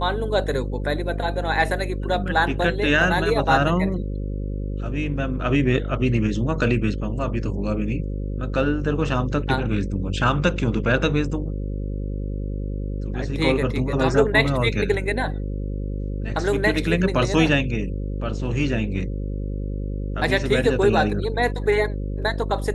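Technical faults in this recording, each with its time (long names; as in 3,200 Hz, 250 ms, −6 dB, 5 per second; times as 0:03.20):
mains buzz 50 Hz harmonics 11 −27 dBFS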